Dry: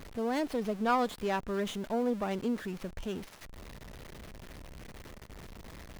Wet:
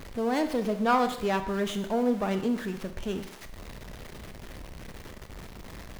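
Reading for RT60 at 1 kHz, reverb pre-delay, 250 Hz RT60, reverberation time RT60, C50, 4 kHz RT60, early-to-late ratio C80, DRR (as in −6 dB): 0.75 s, 19 ms, 0.70 s, 0.75 s, 10.5 dB, 0.75 s, 13.0 dB, 8.0 dB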